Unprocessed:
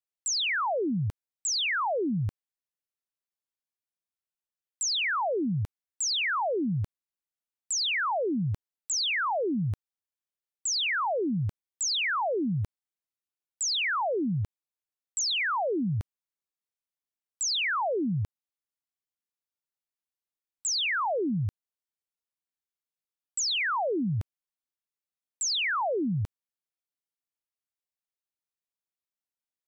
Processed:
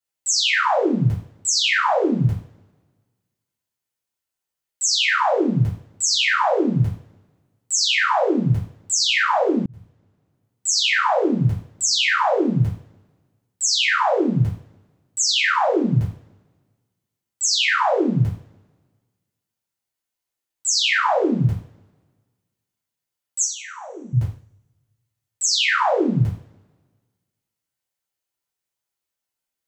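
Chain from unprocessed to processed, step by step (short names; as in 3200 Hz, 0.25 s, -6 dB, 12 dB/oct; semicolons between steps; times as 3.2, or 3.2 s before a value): 23.44–24.13 expander -17 dBFS; two-slope reverb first 0.42 s, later 1.5 s, from -28 dB, DRR -9.5 dB; 9.66–10.66 fade in; gain -1 dB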